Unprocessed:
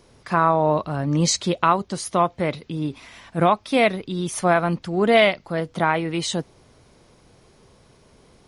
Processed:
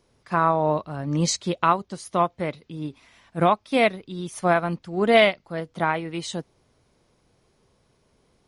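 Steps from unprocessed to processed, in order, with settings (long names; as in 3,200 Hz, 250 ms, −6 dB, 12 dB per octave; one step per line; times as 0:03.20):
expander for the loud parts 1.5 to 1, over −34 dBFS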